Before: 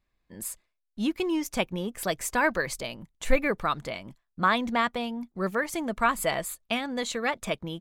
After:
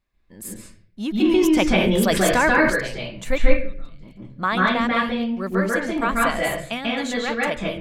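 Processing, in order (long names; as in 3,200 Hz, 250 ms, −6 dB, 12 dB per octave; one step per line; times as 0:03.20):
0:03.38–0:04.03: guitar amp tone stack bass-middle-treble 10-0-1
convolution reverb RT60 0.45 s, pre-delay 137 ms, DRR −4.5 dB
0:01.25–0:02.70: envelope flattener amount 70%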